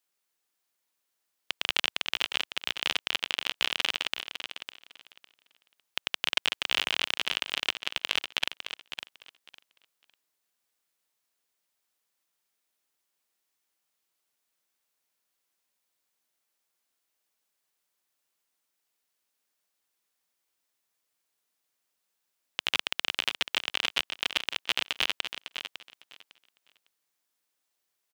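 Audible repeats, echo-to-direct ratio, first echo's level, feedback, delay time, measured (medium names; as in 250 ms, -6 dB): 2, -9.5 dB, -9.5 dB, 19%, 554 ms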